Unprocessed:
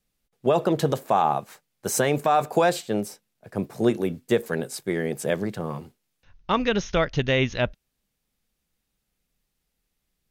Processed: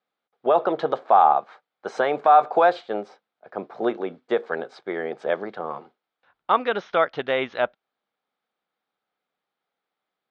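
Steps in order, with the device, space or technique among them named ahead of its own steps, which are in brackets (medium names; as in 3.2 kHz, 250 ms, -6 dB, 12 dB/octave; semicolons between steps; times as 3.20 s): phone earpiece (cabinet simulation 460–3300 Hz, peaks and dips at 760 Hz +5 dB, 1.3 kHz +5 dB, 1.9 kHz -4 dB, 2.7 kHz -9 dB); trim +2.5 dB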